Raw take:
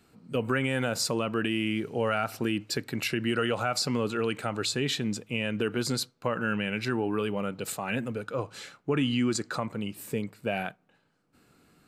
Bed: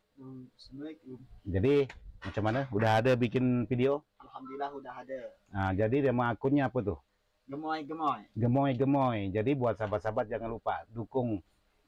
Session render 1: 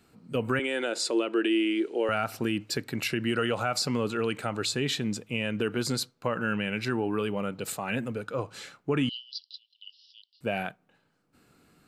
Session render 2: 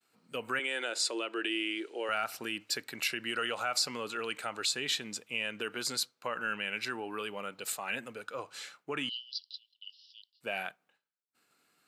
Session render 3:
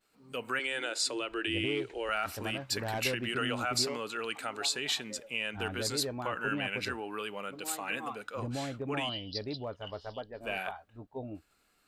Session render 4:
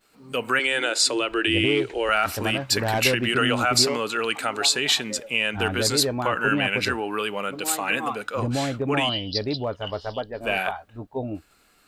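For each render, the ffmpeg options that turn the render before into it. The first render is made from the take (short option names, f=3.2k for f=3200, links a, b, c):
-filter_complex "[0:a]asettb=1/sr,asplit=3[a][b][c];[a]atrim=end=0.594[d];[b]atrim=start=0.59:end=2.09,asetpts=PTS-STARTPTS,afade=t=in:d=0.004:c=qsin,afade=t=out:st=1.496:d=0.004:c=qsin,highpass=f=310:w=0.5412,highpass=f=310:w=1.3066,equalizer=f=340:t=q:w=4:g=10,equalizer=f=760:t=q:w=4:g=-3,equalizer=f=1.1k:t=q:w=4:g=-6,equalizer=f=3.6k:t=q:w=4:g=5,equalizer=f=5.8k:t=q:w=4:g=-5,lowpass=f=9.1k:w=0.5412,lowpass=f=9.1k:w=1.3066[e];[c]atrim=start=2.086[f];[d][e]acrossfade=d=0.004:c1=hsin:c2=qsin[g];[g][f]acrossfade=d=0.004:c1=qsin:c2=hsin,asettb=1/sr,asplit=3[h][i][j];[h]atrim=end=9.094[k];[i]atrim=start=9.09:end=10.41,asetpts=PTS-STARTPTS,afade=t=in:d=0.004:c=qsin,afade=t=out:st=1.316:d=0.004:c=qsin,asuperpass=centerf=4000:order=20:qfactor=1.5[l];[j]atrim=start=10.406[m];[k][l]acrossfade=d=0.004:c1=hsin:c2=qsin[n];[n][m]acrossfade=d=0.004:c1=qsin:c2=hsin"
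-af "agate=range=-33dB:threshold=-57dB:ratio=3:detection=peak,highpass=f=1.3k:p=1"
-filter_complex "[1:a]volume=-9.5dB[a];[0:a][a]amix=inputs=2:normalize=0"
-af "volume=11dB"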